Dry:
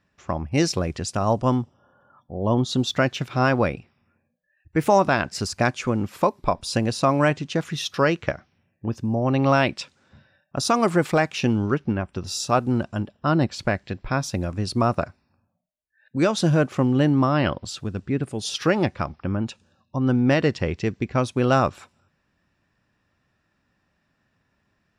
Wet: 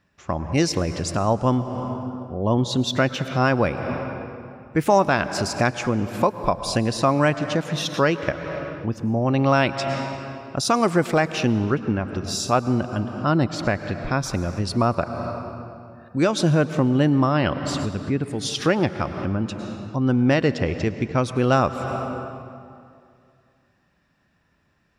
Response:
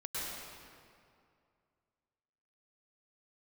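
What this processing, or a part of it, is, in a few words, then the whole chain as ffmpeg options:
ducked reverb: -filter_complex "[0:a]asplit=3[a][b][c];[1:a]atrim=start_sample=2205[d];[b][d]afir=irnorm=-1:irlink=0[e];[c]apad=whole_len=1101753[f];[e][f]sidechaincompress=threshold=-30dB:ratio=5:attack=8:release=241,volume=-4.5dB[g];[a][g]amix=inputs=2:normalize=0"

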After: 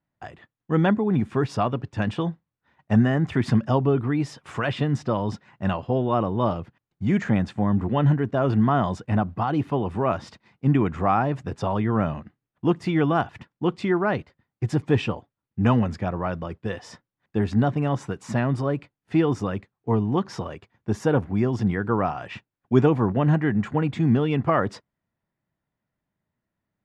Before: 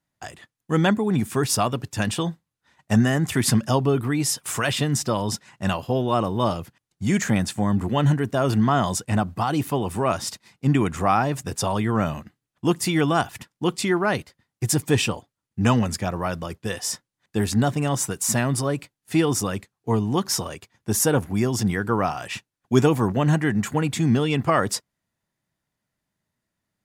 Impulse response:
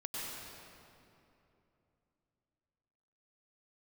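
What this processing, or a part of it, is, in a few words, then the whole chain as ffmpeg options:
phone in a pocket: -af "lowpass=3.4k,highshelf=f=2.3k:g=-9"

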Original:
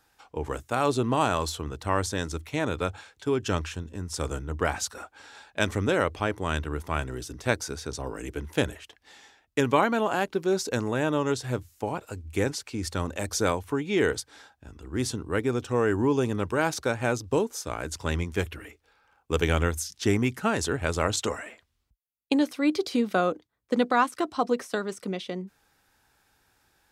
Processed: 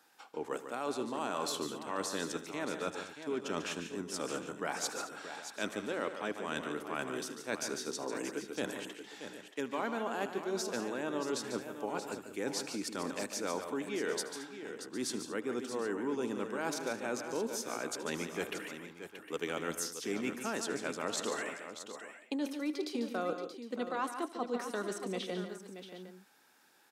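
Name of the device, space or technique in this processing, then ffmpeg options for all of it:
compression on the reversed sound: -af "highpass=f=200:w=0.5412,highpass=f=200:w=1.3066,areverse,acompressor=threshold=-35dB:ratio=4,areverse,aecho=1:1:77|145|175|218|629|758:0.119|0.355|0.112|0.133|0.316|0.158"

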